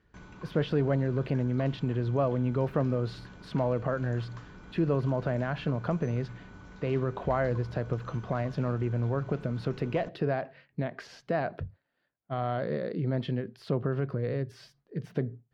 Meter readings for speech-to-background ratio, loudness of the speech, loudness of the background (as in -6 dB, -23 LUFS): 18.5 dB, -31.0 LUFS, -49.5 LUFS